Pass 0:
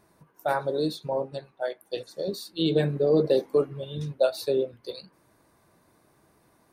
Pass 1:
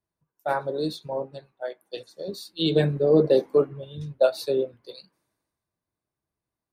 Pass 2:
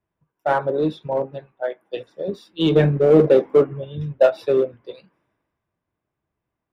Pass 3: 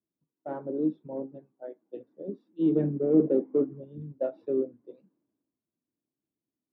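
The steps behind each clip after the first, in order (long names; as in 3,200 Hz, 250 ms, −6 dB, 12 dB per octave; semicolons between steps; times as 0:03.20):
high-shelf EQ 6,400 Hz −5 dB; multiband upward and downward expander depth 70%
Savitzky-Golay smoothing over 25 samples; in parallel at −5.5 dB: hard clipping −23 dBFS, distortion −5 dB; on the sum: level +3.5 dB
resonant band-pass 270 Hz, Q 3.2; level −1 dB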